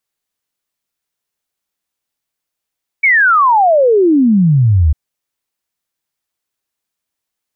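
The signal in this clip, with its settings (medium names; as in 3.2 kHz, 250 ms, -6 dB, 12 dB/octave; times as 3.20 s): log sweep 2.3 kHz -> 71 Hz 1.90 s -6.5 dBFS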